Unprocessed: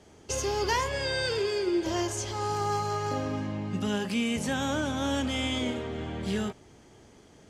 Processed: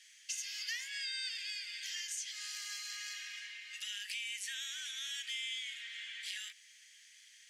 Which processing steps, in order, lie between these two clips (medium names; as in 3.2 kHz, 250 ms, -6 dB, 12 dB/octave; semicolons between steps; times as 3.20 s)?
Chebyshev high-pass 1.8 kHz, order 5; compression 3:1, threshold -46 dBFS, peak gain reduction 13 dB; trim +5 dB